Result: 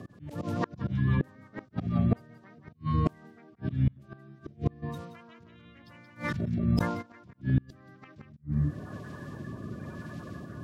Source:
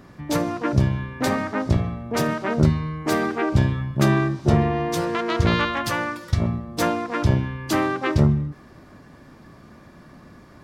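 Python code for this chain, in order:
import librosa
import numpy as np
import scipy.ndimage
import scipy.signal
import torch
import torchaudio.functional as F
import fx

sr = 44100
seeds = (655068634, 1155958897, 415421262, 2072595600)

y = fx.spec_quant(x, sr, step_db=30)
y = fx.over_compress(y, sr, threshold_db=-24.0, ratio=-1.0)
y = fx.rotary_switch(y, sr, hz=6.0, then_hz=1.0, switch_at_s=1.83)
y = fx.bass_treble(y, sr, bass_db=11, treble_db=-12)
y = y + 10.0 ** (-6.5 / 20.0) * np.pad(y, (int(176 * sr / 1000.0), 0))[:len(y)]
y = fx.auto_swell(y, sr, attack_ms=328.0)
y = scipy.signal.sosfilt(scipy.signal.butter(4, 86.0, 'highpass', fs=sr, output='sos'), y)
y = fx.high_shelf(y, sr, hz=2500.0, db=11.0)
y = fx.gate_flip(y, sr, shuts_db=-14.0, range_db=-32)
y = fx.sustainer(y, sr, db_per_s=52.0, at=(4.82, 7.01), fade=0.02)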